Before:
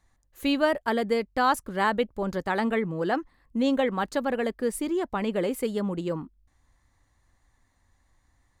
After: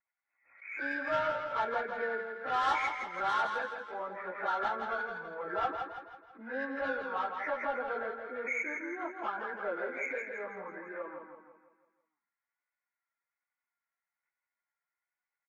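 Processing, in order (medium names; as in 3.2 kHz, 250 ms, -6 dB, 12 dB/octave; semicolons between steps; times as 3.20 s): knee-point frequency compression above 1.3 kHz 4:1; gate -58 dBFS, range -20 dB; high-pass 760 Hz 12 dB/octave; saturation -23 dBFS, distortion -12 dB; plain phase-vocoder stretch 1.8×; feedback delay 165 ms, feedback 46%, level -6 dB; vibrato 1.2 Hz 36 cents; swell ahead of each attack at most 110 dB/s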